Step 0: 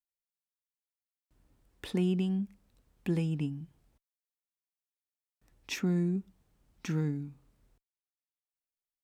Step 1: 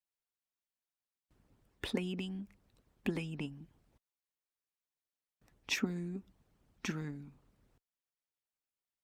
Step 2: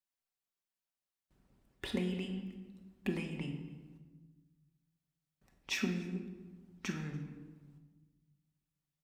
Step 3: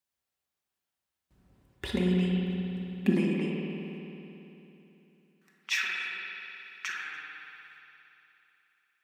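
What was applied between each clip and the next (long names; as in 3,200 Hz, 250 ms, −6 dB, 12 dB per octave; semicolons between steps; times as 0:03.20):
harmonic and percussive parts rebalanced harmonic −16 dB; high-shelf EQ 5,000 Hz −6 dB; level +5 dB
single-tap delay 288 ms −24 dB; rectangular room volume 850 cubic metres, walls mixed, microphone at 1.1 metres; level −2.5 dB
high-pass filter sweep 60 Hz → 1,500 Hz, 0:02.33–0:04.32; spring reverb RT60 3.2 s, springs 55 ms, chirp 25 ms, DRR 0 dB; level +4 dB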